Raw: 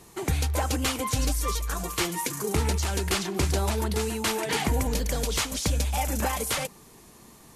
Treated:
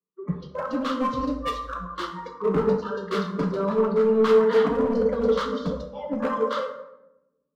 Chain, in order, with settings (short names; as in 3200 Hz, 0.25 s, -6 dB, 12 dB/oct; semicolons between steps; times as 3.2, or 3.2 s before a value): speaker cabinet 170–3600 Hz, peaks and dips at 330 Hz +9 dB, 800 Hz -9 dB, 1200 Hz +6 dB, 1800 Hz -4 dB; fixed phaser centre 490 Hz, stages 8; in parallel at -2 dB: compressor, threshold -39 dBFS, peak gain reduction 15 dB; on the sum: low-pass opened by the level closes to 1600 Hz, open at -24 dBFS; tilt -2 dB/oct; on a send: analogue delay 0.233 s, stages 1024, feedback 80%, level -9.5 dB; on the sum: spectral noise reduction 23 dB; hard clip -24 dBFS, distortion -14 dB; plate-style reverb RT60 1.2 s, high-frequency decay 0.55×, DRR 2.5 dB; three-band expander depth 70%; gain +3.5 dB